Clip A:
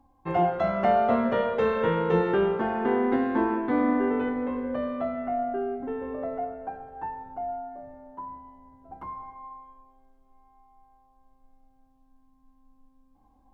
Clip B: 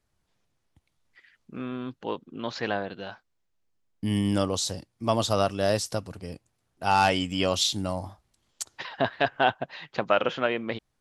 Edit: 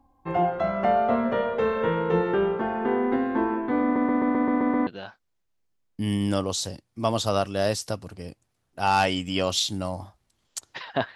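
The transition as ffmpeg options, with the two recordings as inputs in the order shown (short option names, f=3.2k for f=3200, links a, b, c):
-filter_complex "[0:a]apad=whole_dur=11.15,atrim=end=11.15,asplit=8[a][b][c][d][e][f][g][h];[a]atrim=end=3.962[i];[b]atrim=start=3.828:end=3.962[j];[c]atrim=start=3.828:end=3.962[k];[d]atrim=start=3.828:end=3.962[l];[e]atrim=start=3.828:end=3.962[m];[f]atrim=start=3.828:end=3.962[n];[g]atrim=start=3.828:end=3.962[o];[h]atrim=start=3.828:end=3.962[p];[1:a]atrim=start=2.908:end=9.19[q];[i][j]acrossfade=d=0.004:c1=hsin:c2=hsin[r];[r][k]acrossfade=d=0.004:c1=hsin:c2=hsin[s];[s][l]acrossfade=d=0.004:c1=hsin:c2=hsin[t];[t][m]acrossfade=d=0.004:c1=hsin:c2=hsin[u];[u][n]acrossfade=d=0.004:c1=hsin:c2=hsin[v];[v][o]acrossfade=d=0.004:c1=hsin:c2=hsin[w];[w][p]acrossfade=d=0.004:c1=hsin:c2=hsin[x];[x][q]acrossfade=d=0.004:c1=hsin:c2=hsin"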